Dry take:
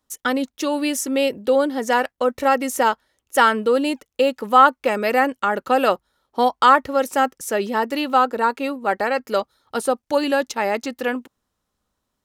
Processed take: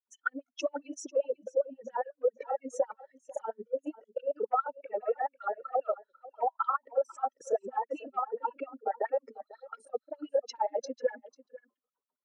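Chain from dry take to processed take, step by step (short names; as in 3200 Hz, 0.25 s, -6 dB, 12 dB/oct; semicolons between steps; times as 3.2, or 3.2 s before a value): spectral contrast raised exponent 2.9; HPF 140 Hz 24 dB/oct; spectral gain 3.33–3.78, 940–2800 Hz -20 dB; LPF 5600 Hz 24 dB/oct; bell 4400 Hz -3.5 dB 0.24 oct; notch 3700 Hz, Q 6.8; compressor 10:1, threshold -25 dBFS, peak gain reduction 17 dB; grains, spray 24 ms, pitch spread up and down by 0 st; LFO high-pass sine 7.4 Hz 400–4400 Hz; echo 0.495 s -19 dB; gain -3.5 dB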